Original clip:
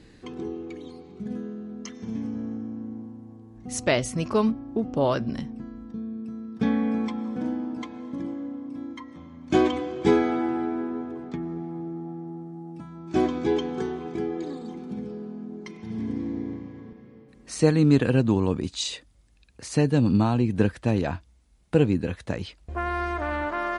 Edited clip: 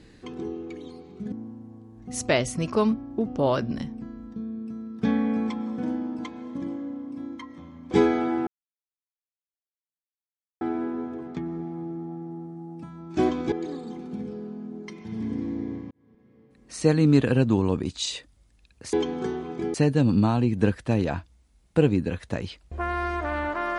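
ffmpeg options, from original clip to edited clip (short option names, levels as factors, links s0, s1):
-filter_complex "[0:a]asplit=8[s0][s1][s2][s3][s4][s5][s6][s7];[s0]atrim=end=1.322[s8];[s1]atrim=start=2.898:end=9.492[s9];[s2]atrim=start=10.018:end=10.58,asetpts=PTS-STARTPTS,afade=t=out:st=0.558:d=0.004:c=hsin,apad=pad_dur=2.14[s10];[s3]atrim=start=10.58:end=13.492,asetpts=PTS-STARTPTS,afade=t=in:d=0.004:c=hsin[s11];[s4]atrim=start=14.298:end=16.69,asetpts=PTS-STARTPTS,afade=t=out:st=2.388:d=0.004:c=hsin[s12];[s5]atrim=start=16.69:end=19.712,asetpts=PTS-STARTPTS,afade=t=in:d=1.08[s13];[s6]atrim=start=13.488:end=14.302[s14];[s7]atrim=start=19.708[s15];[s8][s9]acrossfade=d=0.004:c1=hsin:c2=hsin[s16];[s10][s11]concat=n=2:v=0:a=1[s17];[s16][s17]acrossfade=d=0.004:c1=hsin:c2=hsin[s18];[s12][s13]concat=n=2:v=0:a=1[s19];[s18][s19]acrossfade=d=0.004:c1=hsin:c2=hsin[s20];[s20][s14]acrossfade=d=0.004:c1=hsin:c2=hsin[s21];[s21][s15]acrossfade=d=0.004:c1=hsin:c2=hsin"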